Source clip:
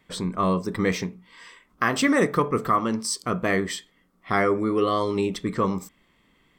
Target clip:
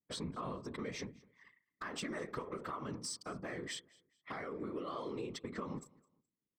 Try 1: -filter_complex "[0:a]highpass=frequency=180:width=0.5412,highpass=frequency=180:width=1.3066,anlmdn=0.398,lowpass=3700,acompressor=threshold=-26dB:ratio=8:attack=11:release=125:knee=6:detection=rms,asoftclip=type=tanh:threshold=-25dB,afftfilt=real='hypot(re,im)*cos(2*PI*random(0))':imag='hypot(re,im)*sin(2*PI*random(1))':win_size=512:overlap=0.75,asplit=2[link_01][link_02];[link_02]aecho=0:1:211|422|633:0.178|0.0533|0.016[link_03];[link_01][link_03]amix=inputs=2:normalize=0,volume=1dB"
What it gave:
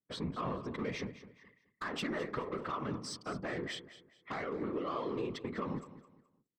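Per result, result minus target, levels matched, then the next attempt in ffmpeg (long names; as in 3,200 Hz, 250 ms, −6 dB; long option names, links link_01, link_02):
8,000 Hz band −8.5 dB; downward compressor: peak gain reduction −6.5 dB; echo-to-direct +9 dB
-filter_complex "[0:a]highpass=frequency=180:width=0.5412,highpass=frequency=180:width=1.3066,anlmdn=0.398,lowpass=8600,acompressor=threshold=-26dB:ratio=8:attack=11:release=125:knee=6:detection=rms,asoftclip=type=tanh:threshold=-25dB,afftfilt=real='hypot(re,im)*cos(2*PI*random(0))':imag='hypot(re,im)*sin(2*PI*random(1))':win_size=512:overlap=0.75,asplit=2[link_01][link_02];[link_02]aecho=0:1:211|422|633:0.178|0.0533|0.016[link_03];[link_01][link_03]amix=inputs=2:normalize=0,volume=1dB"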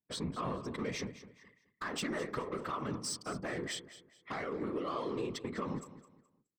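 downward compressor: peak gain reduction −6 dB; echo-to-direct +9 dB
-filter_complex "[0:a]highpass=frequency=180:width=0.5412,highpass=frequency=180:width=1.3066,anlmdn=0.398,lowpass=8600,acompressor=threshold=-33dB:ratio=8:attack=11:release=125:knee=6:detection=rms,asoftclip=type=tanh:threshold=-25dB,afftfilt=real='hypot(re,im)*cos(2*PI*random(0))':imag='hypot(re,im)*sin(2*PI*random(1))':win_size=512:overlap=0.75,asplit=2[link_01][link_02];[link_02]aecho=0:1:211|422|633:0.178|0.0533|0.016[link_03];[link_01][link_03]amix=inputs=2:normalize=0,volume=1dB"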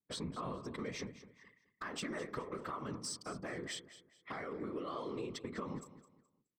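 echo-to-direct +9 dB
-filter_complex "[0:a]highpass=frequency=180:width=0.5412,highpass=frequency=180:width=1.3066,anlmdn=0.398,lowpass=8600,acompressor=threshold=-33dB:ratio=8:attack=11:release=125:knee=6:detection=rms,asoftclip=type=tanh:threshold=-25dB,afftfilt=real='hypot(re,im)*cos(2*PI*random(0))':imag='hypot(re,im)*sin(2*PI*random(1))':win_size=512:overlap=0.75,asplit=2[link_01][link_02];[link_02]aecho=0:1:211|422:0.0631|0.0189[link_03];[link_01][link_03]amix=inputs=2:normalize=0,volume=1dB"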